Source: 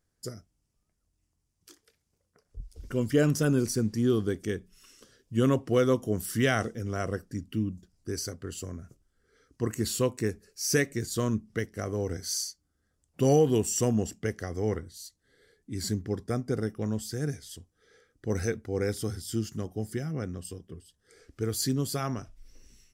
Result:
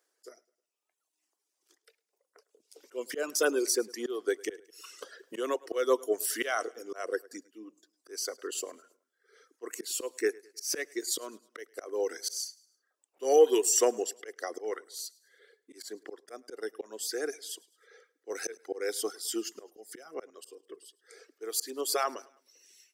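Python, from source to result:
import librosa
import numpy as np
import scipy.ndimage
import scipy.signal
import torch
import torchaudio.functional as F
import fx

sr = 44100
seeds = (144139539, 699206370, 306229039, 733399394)

p1 = scipy.signal.sosfilt(scipy.signal.butter(6, 360.0, 'highpass', fs=sr, output='sos'), x)
p2 = fx.dereverb_blind(p1, sr, rt60_s=1.0)
p3 = fx.auto_swell(p2, sr, attack_ms=238.0)
p4 = p3 + fx.echo_feedback(p3, sr, ms=105, feedback_pct=44, wet_db=-23.5, dry=0)
p5 = fx.band_squash(p4, sr, depth_pct=70, at=(4.45, 5.66))
y = p5 * 10.0 ** (5.5 / 20.0)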